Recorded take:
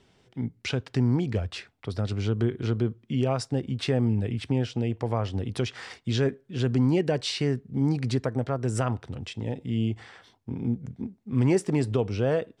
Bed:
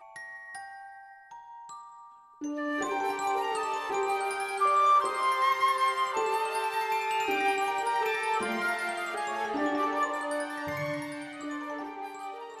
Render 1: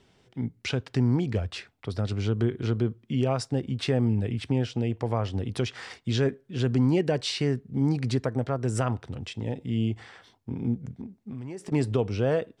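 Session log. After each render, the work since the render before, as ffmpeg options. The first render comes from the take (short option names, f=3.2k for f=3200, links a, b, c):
-filter_complex "[0:a]asettb=1/sr,asplit=3[a][b][c];[a]atrim=end=11.014[d];[b]atrim=start=11.01:end=11.72,asetpts=PTS-STARTPTS,afade=t=in:d=0.004:c=qsin,afade=t=out:st=0.706:d=0.004:c=qsin,acompressor=threshold=-33dB:ratio=12:attack=3.2:release=140:knee=1:detection=peak[e];[c]atrim=start=11.716[f];[d][e]acrossfade=d=0.004:c1=hsin:c2=qsin[g];[g][f]acrossfade=d=0.004:c1=qsin:c2=hsin"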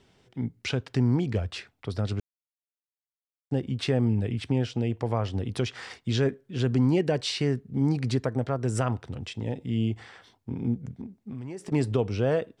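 -filter_complex "[0:a]asplit=3[a][b][c];[a]atrim=end=2.2,asetpts=PTS-STARTPTS,afade=t=out:st=2.196:d=0.004:c=hsin[d];[b]atrim=start=2.2:end=3.51,asetpts=PTS-STARTPTS,volume=0[e];[c]atrim=start=3.51,asetpts=PTS-STARTPTS,afade=t=in:d=0.004:c=hsin[f];[d][e][f]concat=n=3:v=0:a=1"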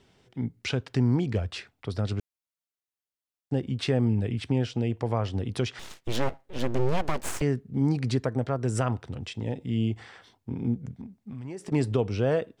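-filter_complex "[0:a]asettb=1/sr,asplit=3[a][b][c];[a]atrim=end=5.794[d];[b]atrim=start=5.79:end=7.42,asetpts=PTS-STARTPTS,afade=t=in:d=0.004:c=qsin,afade=t=out:st=1.626:d=0.004:c=qsin,aeval=exprs='abs(val(0))':c=same[e];[c]atrim=start=7.416[f];[d][e]acrossfade=d=0.004:c1=hsin:c2=qsin[g];[g][f]acrossfade=d=0.004:c1=qsin:c2=hsin,asettb=1/sr,asplit=3[h][i][j];[h]atrim=end=10.964[k];[i]atrim=start=10.96:end=11.45,asetpts=PTS-STARTPTS,afade=t=in:d=0.004:c=qsin,afade=t=out:st=0.486:d=0.004:c=qsin,equalizer=f=380:w=1.5:g=-7[l];[j]atrim=start=11.446[m];[k][l]acrossfade=d=0.004:c1=hsin:c2=qsin[n];[n][m]acrossfade=d=0.004:c1=qsin:c2=hsin"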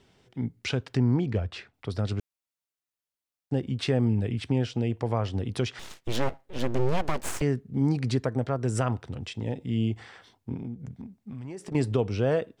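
-filter_complex "[0:a]asettb=1/sr,asplit=3[a][b][c];[a]atrim=end=0.974[d];[b]atrim=start=0.97:end=1.74,asetpts=PTS-STARTPTS,afade=t=in:d=0.004:c=qsin,afade=t=out:st=0.766:d=0.004:c=qsin,aemphasis=mode=reproduction:type=50kf[e];[c]atrim=start=1.736[f];[d][e]acrossfade=d=0.004:c1=hsin:c2=qsin[g];[g][f]acrossfade=d=0.004:c1=qsin:c2=hsin,asettb=1/sr,asplit=3[h][i][j];[h]atrim=end=10.564[k];[i]atrim=start=10.56:end=11.75,asetpts=PTS-STARTPTS,afade=t=in:d=0.004:c=qsin,afade=t=out:st=1.186:d=0.004:c=qsin,acompressor=threshold=-33dB:ratio=4:attack=3.2:release=140:knee=1:detection=peak[l];[j]atrim=start=11.746[m];[k][l]acrossfade=d=0.004:c1=hsin:c2=qsin[n];[n][m]acrossfade=d=0.004:c1=qsin:c2=hsin"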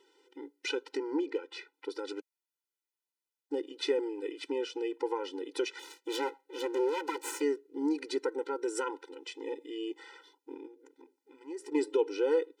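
-af "afftfilt=real='re*eq(mod(floor(b*sr/1024/260),2),1)':imag='im*eq(mod(floor(b*sr/1024/260),2),1)':win_size=1024:overlap=0.75"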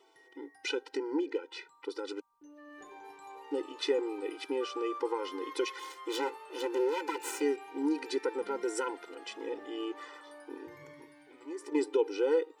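-filter_complex "[1:a]volume=-19.5dB[a];[0:a][a]amix=inputs=2:normalize=0"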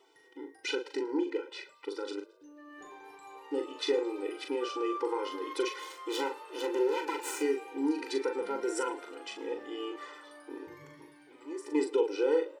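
-filter_complex "[0:a]asplit=2[a][b];[b]adelay=40,volume=-6dB[c];[a][c]amix=inputs=2:normalize=0,asplit=4[d][e][f][g];[e]adelay=110,afreqshift=37,volume=-22dB[h];[f]adelay=220,afreqshift=74,volume=-28dB[i];[g]adelay=330,afreqshift=111,volume=-34dB[j];[d][h][i][j]amix=inputs=4:normalize=0"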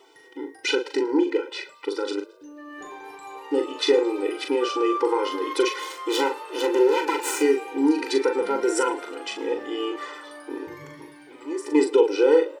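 -af "volume=10dB"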